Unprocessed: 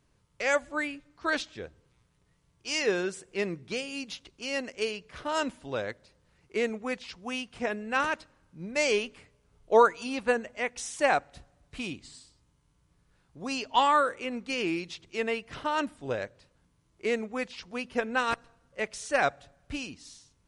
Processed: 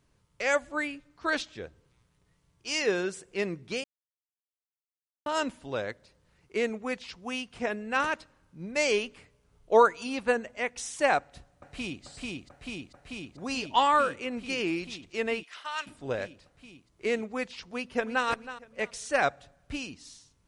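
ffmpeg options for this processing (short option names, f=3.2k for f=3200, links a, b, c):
-filter_complex "[0:a]asplit=2[a][b];[b]afade=t=in:st=11.18:d=0.01,afade=t=out:st=12.04:d=0.01,aecho=0:1:440|880|1320|1760|2200|2640|3080|3520|3960|4400|4840|5280:0.841395|0.715186|0.607908|0.516722|0.439214|0.373331|0.317332|0.269732|0.229272|0.194881|0.165649|0.140802[c];[a][c]amix=inputs=2:normalize=0,asplit=3[d][e][f];[d]afade=t=out:st=15.42:d=0.02[g];[e]highpass=1.4k,afade=t=in:st=15.42:d=0.02,afade=t=out:st=15.86:d=0.02[h];[f]afade=t=in:st=15.86:d=0.02[i];[g][h][i]amix=inputs=3:normalize=0,asplit=2[j][k];[k]afade=t=in:st=17.66:d=0.01,afade=t=out:st=18.26:d=0.01,aecho=0:1:320|640|960:0.223872|0.0671616|0.0201485[l];[j][l]amix=inputs=2:normalize=0,asplit=3[m][n][o];[m]atrim=end=3.84,asetpts=PTS-STARTPTS,afade=t=out:st=3.836:d=0.004:c=hsin[p];[n]atrim=start=3.84:end=5.26,asetpts=PTS-STARTPTS,volume=0[q];[o]atrim=start=5.26,asetpts=PTS-STARTPTS,afade=t=in:d=0.004:c=hsin[r];[p][q][r]concat=n=3:v=0:a=1"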